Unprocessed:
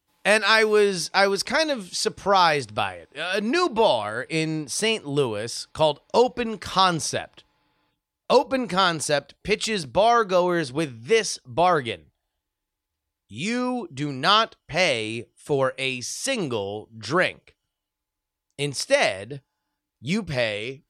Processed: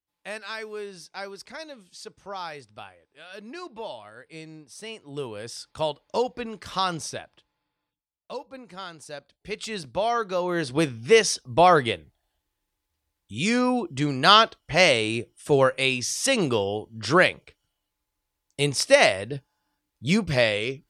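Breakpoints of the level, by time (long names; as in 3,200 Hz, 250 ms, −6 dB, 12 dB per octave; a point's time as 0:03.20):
0:04.80 −17 dB
0:05.45 −6.5 dB
0:07.03 −6.5 dB
0:08.34 −18 dB
0:09.02 −18 dB
0:09.77 −6.5 dB
0:10.40 −6.5 dB
0:10.82 +3 dB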